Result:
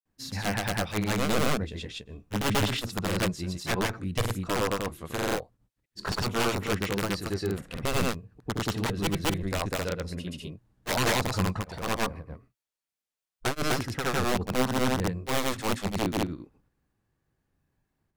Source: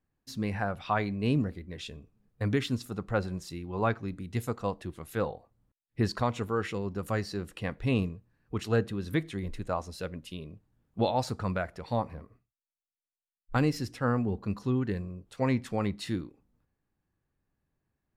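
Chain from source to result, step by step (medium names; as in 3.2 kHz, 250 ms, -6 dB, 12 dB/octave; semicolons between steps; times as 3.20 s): single-diode clipper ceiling -21 dBFS; integer overflow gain 23.5 dB; granulator 162 ms, grains 20 per s, spray 180 ms; trim +8.5 dB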